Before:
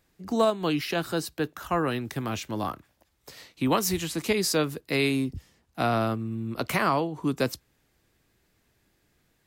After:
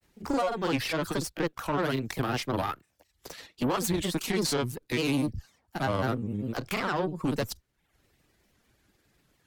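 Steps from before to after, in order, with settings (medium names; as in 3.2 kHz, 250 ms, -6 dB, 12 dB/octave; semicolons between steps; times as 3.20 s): peak limiter -20 dBFS, peak gain reduction 7.5 dB; reverb removal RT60 0.57 s; valve stage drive 28 dB, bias 0.6; granulator, spray 30 ms, pitch spread up and down by 3 st; trim +7 dB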